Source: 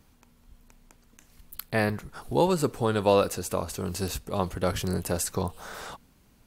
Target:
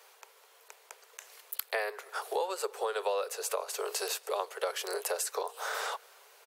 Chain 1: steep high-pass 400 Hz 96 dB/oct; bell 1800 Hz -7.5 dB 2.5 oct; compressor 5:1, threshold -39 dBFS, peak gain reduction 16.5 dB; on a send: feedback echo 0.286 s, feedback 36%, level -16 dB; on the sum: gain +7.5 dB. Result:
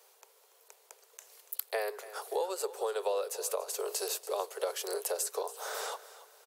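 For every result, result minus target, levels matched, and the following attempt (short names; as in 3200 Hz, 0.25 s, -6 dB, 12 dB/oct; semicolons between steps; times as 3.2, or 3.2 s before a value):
echo-to-direct +11.5 dB; 2000 Hz band -5.0 dB
steep high-pass 400 Hz 96 dB/oct; bell 1800 Hz -7.5 dB 2.5 oct; compressor 5:1, threshold -39 dBFS, peak gain reduction 16.5 dB; on a send: feedback echo 0.286 s, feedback 36%, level -27.5 dB; on the sum: gain +7.5 dB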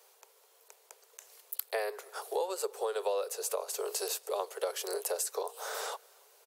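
2000 Hz band -5.0 dB
steep high-pass 400 Hz 96 dB/oct; bell 1800 Hz +2 dB 2.5 oct; compressor 5:1, threshold -39 dBFS, peak gain reduction 19.5 dB; on a send: feedback echo 0.286 s, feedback 36%, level -27.5 dB; on the sum: gain +7.5 dB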